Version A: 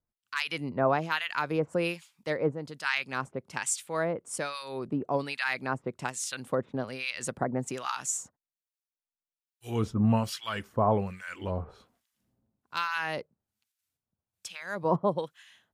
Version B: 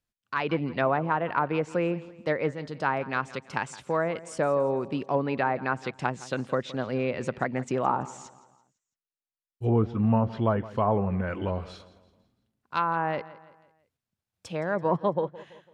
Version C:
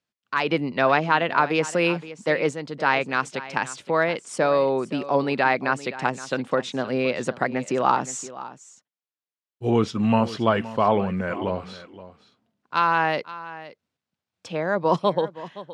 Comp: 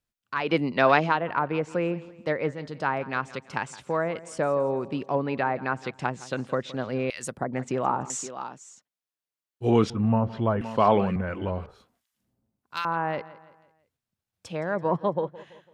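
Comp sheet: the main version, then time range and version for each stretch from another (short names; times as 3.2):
B
0.48–1.14 from C, crossfade 0.16 s
7.1–7.53 from A
8.1–9.9 from C
10.61–11.16 from C
11.66–12.85 from A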